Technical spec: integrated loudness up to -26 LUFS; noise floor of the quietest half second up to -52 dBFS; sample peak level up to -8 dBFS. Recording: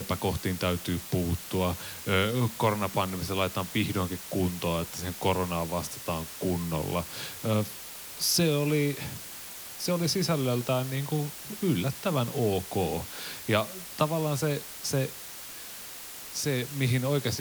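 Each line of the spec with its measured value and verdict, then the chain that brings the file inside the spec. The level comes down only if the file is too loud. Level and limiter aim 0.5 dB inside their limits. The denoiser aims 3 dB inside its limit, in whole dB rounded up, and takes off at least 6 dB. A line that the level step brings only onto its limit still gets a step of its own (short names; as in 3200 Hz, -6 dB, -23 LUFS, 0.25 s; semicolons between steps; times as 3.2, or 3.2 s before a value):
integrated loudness -29.5 LUFS: OK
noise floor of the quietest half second -42 dBFS: fail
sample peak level -9.5 dBFS: OK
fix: denoiser 13 dB, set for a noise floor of -42 dBFS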